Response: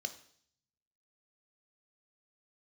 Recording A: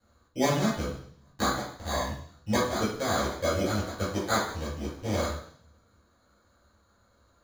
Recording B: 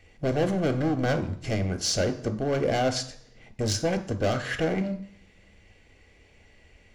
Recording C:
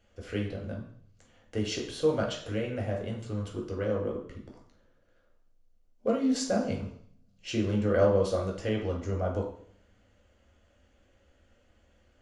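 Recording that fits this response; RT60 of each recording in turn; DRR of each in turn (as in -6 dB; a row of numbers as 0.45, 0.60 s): B; 0.60, 0.60, 0.60 s; -10.0, 7.5, -1.5 dB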